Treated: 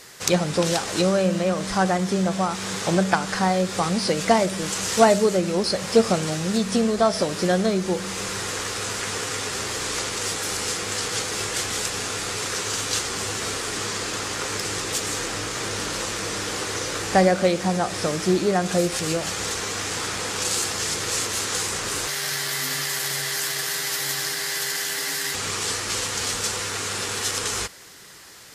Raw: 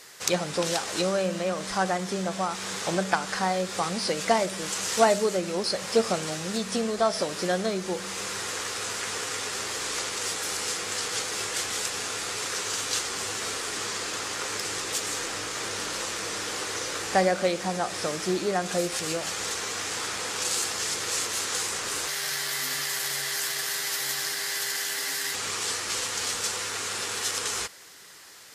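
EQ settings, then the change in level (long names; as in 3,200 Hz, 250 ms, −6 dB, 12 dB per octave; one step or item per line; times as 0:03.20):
low-shelf EQ 250 Hz +10 dB
+3.0 dB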